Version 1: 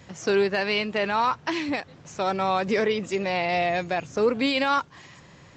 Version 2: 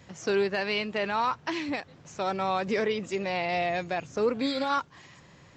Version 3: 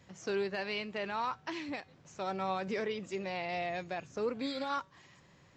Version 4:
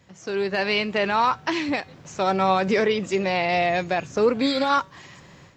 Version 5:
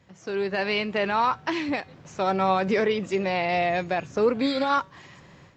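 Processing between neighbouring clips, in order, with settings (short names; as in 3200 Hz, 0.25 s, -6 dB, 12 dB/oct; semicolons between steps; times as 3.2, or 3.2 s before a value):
spectral repair 4.44–4.72, 1300–3200 Hz; gain -4 dB
resonator 190 Hz, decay 0.36 s, harmonics all, mix 40%; gain -4 dB
AGC gain up to 11 dB; gain +3.5 dB
high shelf 5600 Hz -8.5 dB; gain -2 dB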